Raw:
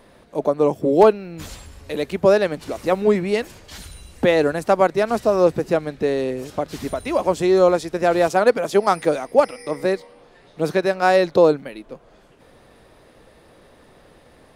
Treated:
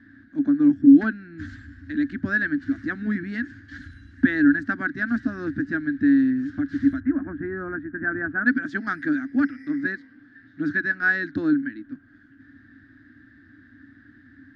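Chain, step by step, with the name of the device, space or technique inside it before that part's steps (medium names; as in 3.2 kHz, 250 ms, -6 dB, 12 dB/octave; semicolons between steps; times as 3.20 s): 7.00–8.46 s: low-pass 1.7 kHz 24 dB/octave; guitar cabinet (cabinet simulation 91–3600 Hz, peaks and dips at 97 Hz +8 dB, 530 Hz -9 dB, 1.7 kHz +6 dB); FFT filter 110 Hz 0 dB, 180 Hz -11 dB, 280 Hz +14 dB, 410 Hz -25 dB, 690 Hz -23 dB, 1 kHz -26 dB, 1.6 kHz +6 dB, 2.5 kHz -19 dB, 6.9 kHz +1 dB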